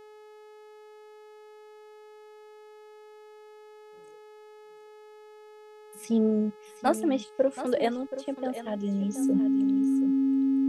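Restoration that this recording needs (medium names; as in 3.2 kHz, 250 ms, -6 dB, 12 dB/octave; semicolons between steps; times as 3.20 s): de-hum 425.5 Hz, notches 36; band-stop 270 Hz, Q 30; inverse comb 727 ms -12 dB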